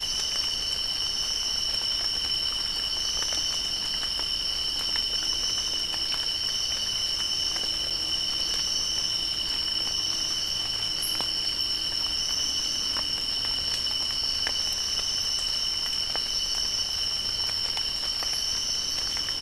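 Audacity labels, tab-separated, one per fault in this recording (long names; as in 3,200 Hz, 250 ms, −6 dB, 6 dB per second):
7.900000	7.910000	drop-out 6 ms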